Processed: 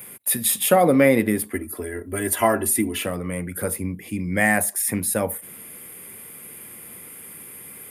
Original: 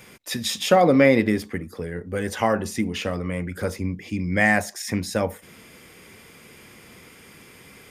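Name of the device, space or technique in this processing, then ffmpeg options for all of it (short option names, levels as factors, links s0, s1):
budget condenser microphone: -filter_complex "[0:a]asettb=1/sr,asplit=3[s0][s1][s2];[s0]atrim=end=1.534[s3];[s1]atrim=start=1.53:end=3.06,asetpts=PTS-STARTPTS,afade=t=in:d=0.004:c=qsin,afade=t=out:st=1.526:d=0.004:c=qsin,aecho=1:1:3:0.95,atrim=end_sample=67473[s4];[s2]atrim=start=3.056[s5];[s3][s4]acrossfade=d=0.004:c1=hsin:c2=qsin[s6];[s6][s5]acrossfade=d=0.004:c1=qsin:c2=hsin,highpass=88,highshelf=f=7900:t=q:w=3:g=12.5"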